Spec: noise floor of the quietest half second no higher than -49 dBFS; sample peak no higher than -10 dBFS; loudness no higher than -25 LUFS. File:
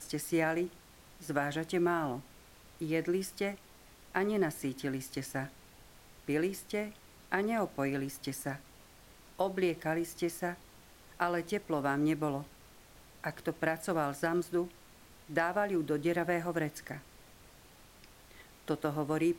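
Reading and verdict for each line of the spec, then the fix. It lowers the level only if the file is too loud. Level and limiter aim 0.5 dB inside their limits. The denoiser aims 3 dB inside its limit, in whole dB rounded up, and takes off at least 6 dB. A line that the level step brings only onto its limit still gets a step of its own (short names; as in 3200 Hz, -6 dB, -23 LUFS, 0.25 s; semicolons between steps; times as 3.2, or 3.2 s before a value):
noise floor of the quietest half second -57 dBFS: OK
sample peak -14.5 dBFS: OK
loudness -34.5 LUFS: OK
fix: none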